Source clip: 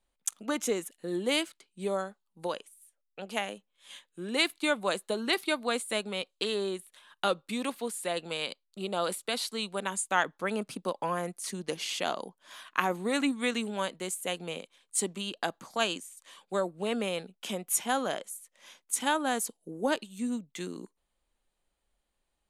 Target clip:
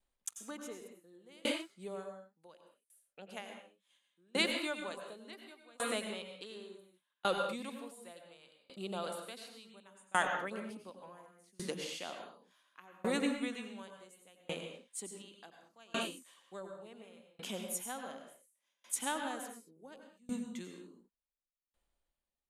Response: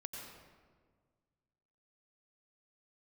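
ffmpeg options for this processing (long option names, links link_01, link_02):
-filter_complex "[1:a]atrim=start_sample=2205,afade=type=out:start_time=0.28:duration=0.01,atrim=end_sample=12789[link_01];[0:a][link_01]afir=irnorm=-1:irlink=0,aeval=exprs='val(0)*pow(10,-30*if(lt(mod(0.69*n/s,1),2*abs(0.69)/1000),1-mod(0.69*n/s,1)/(2*abs(0.69)/1000),(mod(0.69*n/s,1)-2*abs(0.69)/1000)/(1-2*abs(0.69)/1000))/20)':channel_layout=same,volume=1.5dB"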